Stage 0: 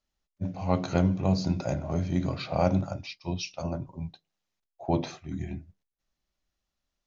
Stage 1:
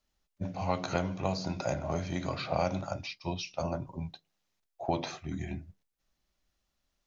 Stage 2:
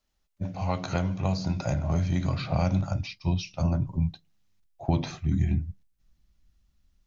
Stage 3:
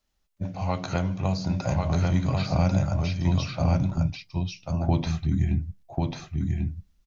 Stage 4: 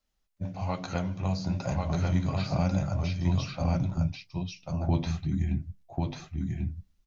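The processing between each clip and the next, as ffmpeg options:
-filter_complex "[0:a]acrossover=split=540|1800[s0][s1][s2];[s0]acompressor=threshold=0.0126:ratio=4[s3];[s1]acompressor=threshold=0.0224:ratio=4[s4];[s2]acompressor=threshold=0.00708:ratio=4[s5];[s3][s4][s5]amix=inputs=3:normalize=0,volume=1.5"
-af "asubboost=boost=6.5:cutoff=200,volume=1.12"
-af "aecho=1:1:1092:0.708,volume=1.12"
-af "flanger=delay=3.7:depth=8.3:regen=-44:speed=1.1:shape=sinusoidal"

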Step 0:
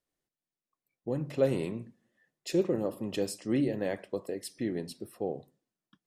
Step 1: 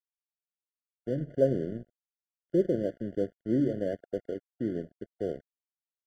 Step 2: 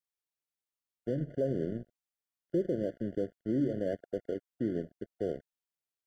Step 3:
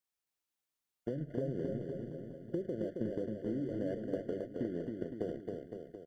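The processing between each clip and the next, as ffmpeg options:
-af "lowpass=f=1200:w=0.5412,lowpass=f=1200:w=1.3066,aeval=exprs='sgn(val(0))*max(abs(val(0))-0.00531,0)':c=same,afftfilt=real='re*eq(mod(floor(b*sr/1024/710),2),0)':imag='im*eq(mod(floor(b*sr/1024/710),2),0)':win_size=1024:overlap=0.75,volume=1.33"
-af "alimiter=limit=0.0841:level=0:latency=1:release=102"
-af "acompressor=threshold=0.0178:ratio=10,aecho=1:1:270|513|731.7|928.5|1106:0.631|0.398|0.251|0.158|0.1,volume=1.19"

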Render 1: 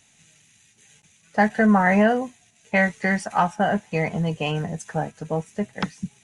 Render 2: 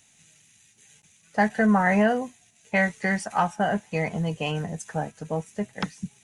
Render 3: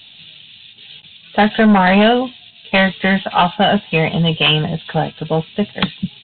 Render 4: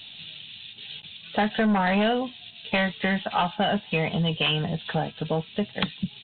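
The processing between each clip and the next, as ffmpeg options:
-af "highshelf=f=8100:g=7,volume=0.708"
-af "aexciter=amount=9.5:drive=7.6:freq=3100,aresample=8000,aeval=exprs='0.531*sin(PI/2*2.82*val(0)/0.531)':c=same,aresample=44100,volume=0.891"
-af "acompressor=threshold=0.0447:ratio=2,volume=0.841"

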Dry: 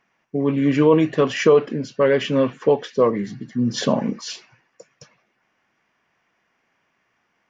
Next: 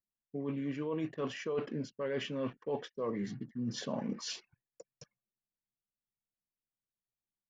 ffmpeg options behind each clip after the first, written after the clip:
-af "areverse,acompressor=threshold=0.0562:ratio=8,areverse,anlmdn=0.0251,volume=0.398"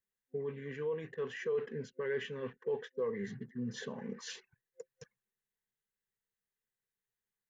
-af "alimiter=level_in=2.37:limit=0.0631:level=0:latency=1:release=458,volume=0.422,superequalizer=6b=0.316:7b=2.24:8b=0.447:11b=2.51:14b=0.562"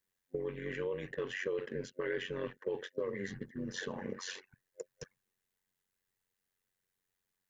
-filter_complex "[0:a]acrossover=split=370|2100[s0][s1][s2];[s0]acompressor=threshold=0.00316:ratio=4[s3];[s1]acompressor=threshold=0.00562:ratio=4[s4];[s2]acompressor=threshold=0.00316:ratio=4[s5];[s3][s4][s5]amix=inputs=3:normalize=0,tremolo=f=92:d=0.75,volume=2.99"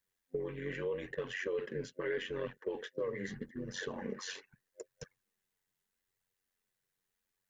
-af "flanger=delay=1.1:depth=6.2:regen=-34:speed=0.8:shape=triangular,volume=1.5"

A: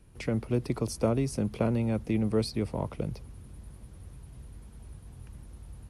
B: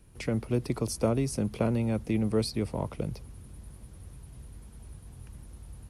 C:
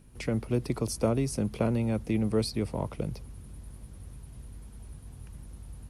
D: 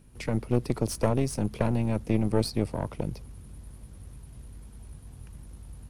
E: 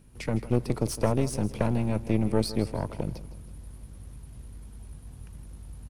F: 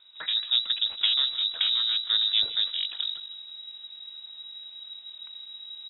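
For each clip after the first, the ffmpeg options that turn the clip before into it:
-af "highshelf=f=5700:g=5"
-af "aeval=exprs='val(0)+0.00224*(sin(2*PI*50*n/s)+sin(2*PI*2*50*n/s)/2+sin(2*PI*3*50*n/s)/3+sin(2*PI*4*50*n/s)/4+sin(2*PI*5*50*n/s)/5)':c=same"
-af "aeval=exprs='0.224*(cos(1*acos(clip(val(0)/0.224,-1,1)))-cos(1*PI/2))+0.0562*(cos(4*acos(clip(val(0)/0.224,-1,1)))-cos(4*PI/2))':c=same"
-af "aecho=1:1:160|320|480|640:0.178|0.0729|0.0299|0.0123"
-af "crystalizer=i=2.5:c=0,lowpass=f=3300:t=q:w=0.5098,lowpass=f=3300:t=q:w=0.6013,lowpass=f=3300:t=q:w=0.9,lowpass=f=3300:t=q:w=2.563,afreqshift=-3900"

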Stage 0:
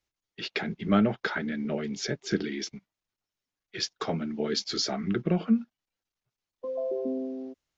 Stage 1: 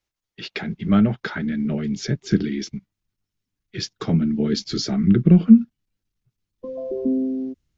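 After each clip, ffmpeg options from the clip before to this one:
-af "asubboost=boost=8:cutoff=240,volume=1.19"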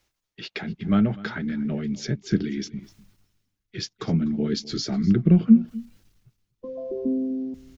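-af "areverse,acompressor=mode=upward:threshold=0.0355:ratio=2.5,areverse,aecho=1:1:249:0.106,volume=0.668"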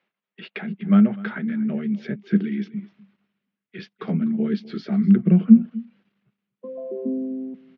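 -af "highpass=f=190:w=0.5412,highpass=f=190:w=1.3066,equalizer=f=200:t=q:w=4:g=8,equalizer=f=300:t=q:w=4:g=-8,equalizer=f=850:t=q:w=4:g=-3,lowpass=f=2900:w=0.5412,lowpass=f=2900:w=1.3066,volume=1.12"

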